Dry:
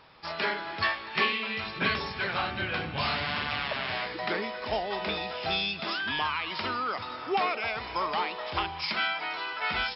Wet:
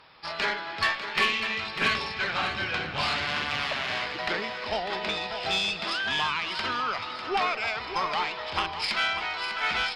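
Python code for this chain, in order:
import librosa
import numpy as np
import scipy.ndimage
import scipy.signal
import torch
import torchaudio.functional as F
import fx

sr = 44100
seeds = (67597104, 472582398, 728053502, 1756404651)

y = fx.tilt_shelf(x, sr, db=-3.0, hz=730.0)
y = fx.cheby_harmonics(y, sr, harmonics=(6,), levels_db=(-24,), full_scale_db=-10.5)
y = y + 10.0 ** (-9.5 / 20.0) * np.pad(y, (int(598 * sr / 1000.0), 0))[:len(y)]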